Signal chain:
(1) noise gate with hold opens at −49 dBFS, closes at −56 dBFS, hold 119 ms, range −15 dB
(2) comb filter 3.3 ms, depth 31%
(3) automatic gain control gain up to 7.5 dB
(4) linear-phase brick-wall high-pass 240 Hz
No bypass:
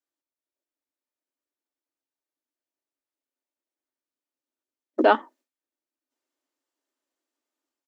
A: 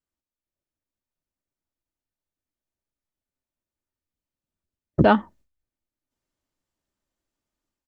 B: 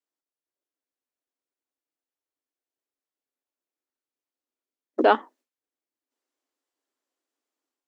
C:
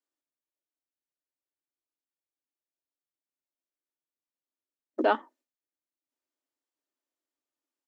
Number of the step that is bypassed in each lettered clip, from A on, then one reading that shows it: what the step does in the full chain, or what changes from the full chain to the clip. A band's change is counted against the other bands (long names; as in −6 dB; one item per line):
4, 250 Hz band +6.5 dB
2, 250 Hz band −1.5 dB
3, change in integrated loudness −6.5 LU